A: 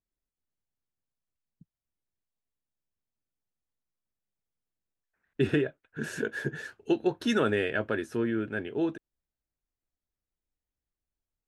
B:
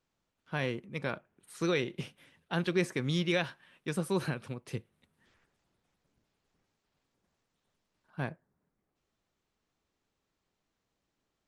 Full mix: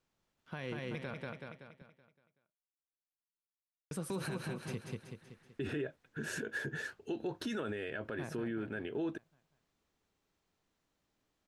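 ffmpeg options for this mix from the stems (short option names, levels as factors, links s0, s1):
-filter_complex "[0:a]agate=range=0.0224:threshold=0.002:ratio=3:detection=peak,adelay=200,volume=0.944[s0];[1:a]alimiter=limit=0.075:level=0:latency=1:release=94,volume=0.944,asplit=3[s1][s2][s3];[s1]atrim=end=1.33,asetpts=PTS-STARTPTS,afade=t=out:st=1.326:d=0.004:c=hsin[s4];[s2]atrim=start=1.33:end=3.91,asetpts=PTS-STARTPTS,volume=0[s5];[s3]atrim=start=3.91,asetpts=PTS-STARTPTS,afade=t=in:d=0.004:c=hsin[s6];[s4][s5][s6]concat=n=3:v=0:a=1,asplit=2[s7][s8];[s8]volume=0.596,aecho=0:1:189|378|567|756|945|1134|1323:1|0.47|0.221|0.104|0.0488|0.0229|0.0108[s9];[s0][s7][s9]amix=inputs=3:normalize=0,alimiter=level_in=1.88:limit=0.0631:level=0:latency=1:release=82,volume=0.531"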